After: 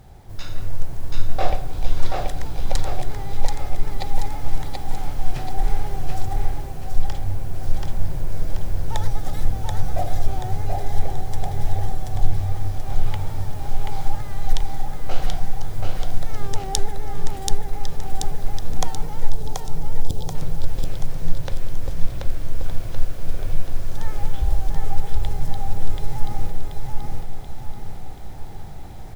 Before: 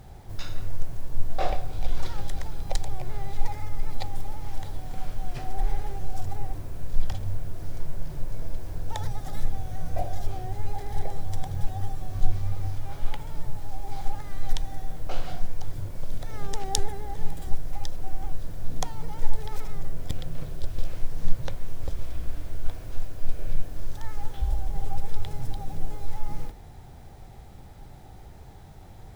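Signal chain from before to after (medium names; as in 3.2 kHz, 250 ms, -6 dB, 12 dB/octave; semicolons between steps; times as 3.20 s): 19.29–20.35 s: Butterworth band-stop 1.7 kHz, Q 0.63; feedback delay 732 ms, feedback 48%, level -3 dB; level rider gain up to 5.5 dB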